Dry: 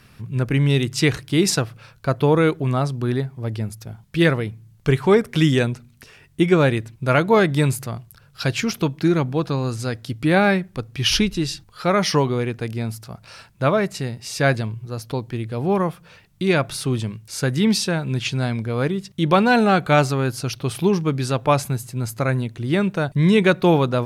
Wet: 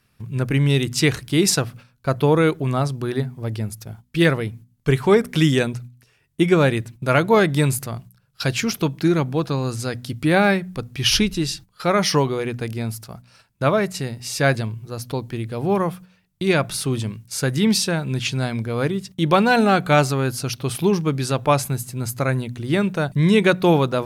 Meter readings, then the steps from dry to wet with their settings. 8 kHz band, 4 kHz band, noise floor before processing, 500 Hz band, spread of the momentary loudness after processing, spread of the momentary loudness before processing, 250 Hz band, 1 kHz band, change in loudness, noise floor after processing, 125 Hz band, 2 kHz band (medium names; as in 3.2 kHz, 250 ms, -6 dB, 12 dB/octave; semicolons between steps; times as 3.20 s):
+3.0 dB, +1.0 dB, -52 dBFS, 0.0 dB, 12 LU, 12 LU, -0.5 dB, 0.0 dB, 0.0 dB, -62 dBFS, -0.5 dB, +0.5 dB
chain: gate -39 dBFS, range -14 dB; treble shelf 7.7 kHz +6.5 dB; de-hum 61.11 Hz, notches 4